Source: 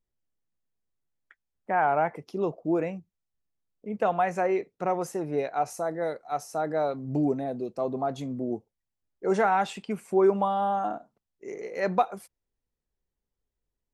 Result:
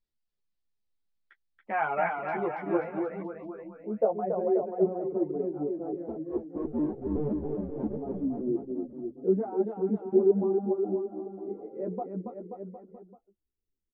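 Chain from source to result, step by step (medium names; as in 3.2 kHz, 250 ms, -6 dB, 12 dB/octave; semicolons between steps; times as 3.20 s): 6.08–7.97 s: cycle switcher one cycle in 2, inverted; low-pass sweep 4.4 kHz -> 340 Hz, 1.21–4.69 s; reverb removal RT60 1.3 s; on a send: bouncing-ball echo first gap 280 ms, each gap 0.9×, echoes 5; on the sum: three-phase chorus; trim -1 dB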